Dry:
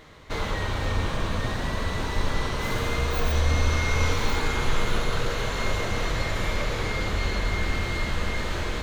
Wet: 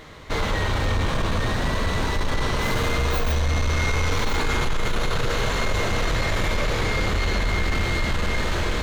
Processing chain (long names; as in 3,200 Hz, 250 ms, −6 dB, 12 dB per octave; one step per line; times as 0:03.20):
in parallel at −1 dB: compressor whose output falls as the input rises −25 dBFS
on the sum: soft clipping −15 dBFS, distortion −17 dB